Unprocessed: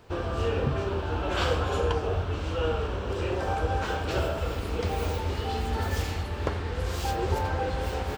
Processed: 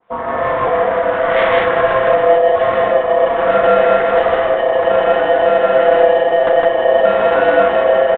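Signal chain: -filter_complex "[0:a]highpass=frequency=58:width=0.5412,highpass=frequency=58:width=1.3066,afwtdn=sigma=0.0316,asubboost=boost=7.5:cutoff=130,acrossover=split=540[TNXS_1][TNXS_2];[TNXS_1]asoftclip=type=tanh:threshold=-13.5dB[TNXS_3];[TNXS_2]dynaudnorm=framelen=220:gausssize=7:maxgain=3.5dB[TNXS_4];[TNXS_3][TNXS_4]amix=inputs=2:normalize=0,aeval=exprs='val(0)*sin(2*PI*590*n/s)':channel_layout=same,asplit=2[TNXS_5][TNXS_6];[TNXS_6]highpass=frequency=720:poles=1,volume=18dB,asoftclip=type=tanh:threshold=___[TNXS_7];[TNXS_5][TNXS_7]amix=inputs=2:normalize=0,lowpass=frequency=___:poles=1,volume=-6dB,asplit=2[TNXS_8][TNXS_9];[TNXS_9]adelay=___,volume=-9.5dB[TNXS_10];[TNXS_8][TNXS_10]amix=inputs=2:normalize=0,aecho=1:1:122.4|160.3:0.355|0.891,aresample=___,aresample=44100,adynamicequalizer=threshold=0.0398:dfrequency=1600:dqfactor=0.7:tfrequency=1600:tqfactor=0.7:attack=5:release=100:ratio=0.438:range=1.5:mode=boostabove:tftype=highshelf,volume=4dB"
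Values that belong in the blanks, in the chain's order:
-12dB, 2.2k, 34, 8000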